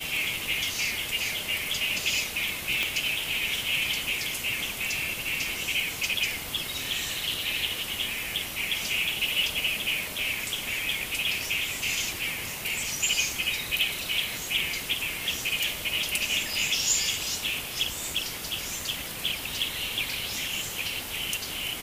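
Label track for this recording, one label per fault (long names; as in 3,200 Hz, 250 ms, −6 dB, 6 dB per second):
2.830000	2.830000	click −10 dBFS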